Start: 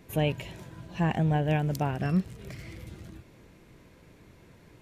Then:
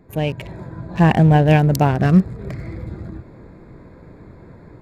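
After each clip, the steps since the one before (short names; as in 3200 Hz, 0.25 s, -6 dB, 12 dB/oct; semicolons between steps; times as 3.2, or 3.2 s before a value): Wiener smoothing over 15 samples; AGC gain up to 9.5 dB; gain +4 dB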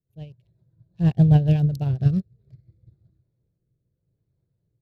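graphic EQ 125/250/1000/2000/4000/8000 Hz +11/-9/-11/-11/+7/-5 dB; rotary speaker horn 8 Hz, later 0.85 Hz, at 1.74; upward expander 2.5:1, over -27 dBFS; gain -3.5 dB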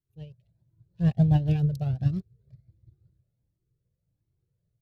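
cascading flanger rising 1.4 Hz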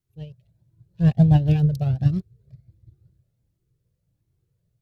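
wow and flutter 27 cents; gain +5.5 dB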